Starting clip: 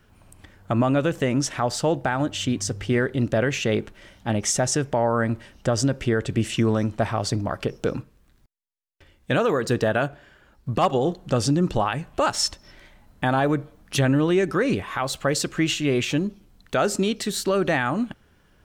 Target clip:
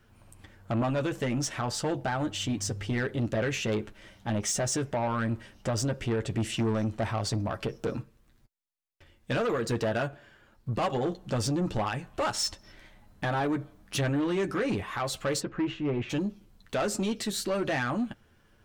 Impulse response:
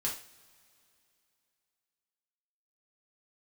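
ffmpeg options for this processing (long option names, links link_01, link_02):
-filter_complex "[0:a]asplit=3[link_01][link_02][link_03];[link_01]afade=type=out:start_time=15.39:duration=0.02[link_04];[link_02]lowpass=1500,afade=type=in:start_time=15.39:duration=0.02,afade=type=out:start_time=16.09:duration=0.02[link_05];[link_03]afade=type=in:start_time=16.09:duration=0.02[link_06];[link_04][link_05][link_06]amix=inputs=3:normalize=0,flanger=delay=8.7:depth=1:regen=-28:speed=0.11:shape=triangular,asoftclip=type=tanh:threshold=-23dB"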